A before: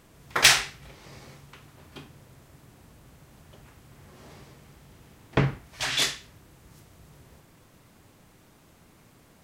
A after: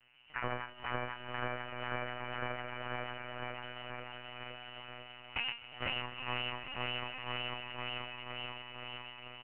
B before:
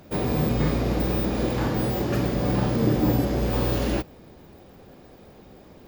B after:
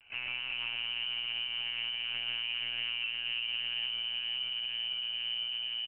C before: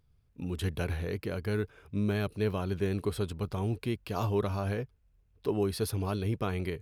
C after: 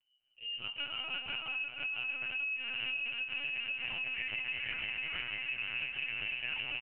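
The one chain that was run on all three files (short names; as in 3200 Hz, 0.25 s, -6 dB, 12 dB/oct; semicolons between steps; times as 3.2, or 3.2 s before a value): regenerating reverse delay 0.247 s, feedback 81%, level -1 dB; low shelf 250 Hz -5 dB; doubler 12 ms -13 dB; diffused feedback echo 0.973 s, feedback 53%, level -12.5 dB; AGC gain up to 5 dB; resonator 61 Hz, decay 0.23 s, harmonics odd, mix 100%; inverted band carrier 3000 Hz; compressor 10:1, threshold -34 dBFS; LPC vocoder at 8 kHz pitch kept; echo 0.255 s -22 dB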